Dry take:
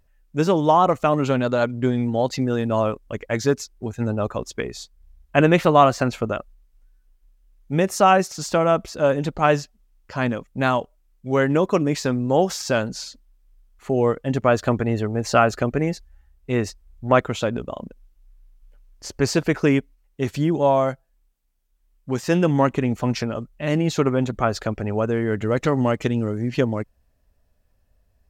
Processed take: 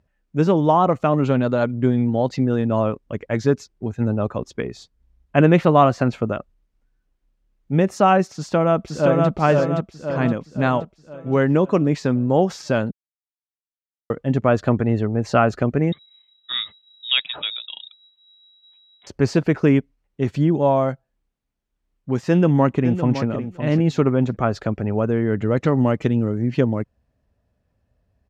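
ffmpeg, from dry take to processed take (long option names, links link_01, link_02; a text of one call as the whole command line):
ffmpeg -i in.wav -filter_complex "[0:a]asplit=2[link_01][link_02];[link_02]afade=type=in:start_time=8.35:duration=0.01,afade=type=out:start_time=9.28:duration=0.01,aecho=0:1:520|1040|1560|2080|2600|3120|3640:0.794328|0.397164|0.198582|0.099291|0.0496455|0.0248228|0.0124114[link_03];[link_01][link_03]amix=inputs=2:normalize=0,asettb=1/sr,asplit=3[link_04][link_05][link_06];[link_04]atrim=end=15.924[link_07];[link_05]atrim=start=15.92:end=19.07,asetpts=PTS-STARTPTS,afade=type=in:duration=0.004:curve=qsin,afade=type=out:start_time=3.146:duration=0.004:curve=qsin,lowpass=frequency=3300:width_type=q:width=0.5098,lowpass=frequency=3300:width_type=q:width=0.6013,lowpass=frequency=3300:width_type=q:width=0.9,lowpass=frequency=3300:width_type=q:width=2.563,afreqshift=-3900[link_08];[link_06]atrim=start=19.066[link_09];[link_07][link_08]acrossfade=duration=0.004:curve1=hsin:curve2=qsin[link_10];[link_10][link_09]acrossfade=duration=0.004:curve1=qsin:curve2=hsin,asplit=2[link_11][link_12];[link_12]afade=type=in:start_time=22.28:duration=0.01,afade=type=out:start_time=23.24:duration=0.01,aecho=0:1:560|1120:0.298538|0.0298538[link_13];[link_11][link_13]amix=inputs=2:normalize=0,asplit=3[link_14][link_15][link_16];[link_14]atrim=end=12.91,asetpts=PTS-STARTPTS,afade=type=out:start_time=12.906:duration=0.004:curve=hsin[link_17];[link_15]atrim=start=12.91:end=14.1,asetpts=PTS-STARTPTS,volume=0[link_18];[link_16]atrim=start=14.1,asetpts=PTS-STARTPTS,afade=type=in:duration=0.004:curve=hsin[link_19];[link_17][link_18][link_19]concat=n=3:v=0:a=1,highpass=140,aemphasis=mode=reproduction:type=bsi,volume=-1dB" out.wav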